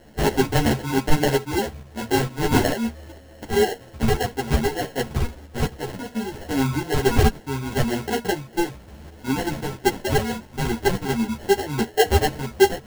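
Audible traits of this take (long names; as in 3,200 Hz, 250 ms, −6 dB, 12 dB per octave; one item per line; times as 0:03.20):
a quantiser's noise floor 8 bits, dither triangular
tremolo saw up 2.2 Hz, depth 45%
aliases and images of a low sample rate 1,200 Hz, jitter 0%
a shimmering, thickened sound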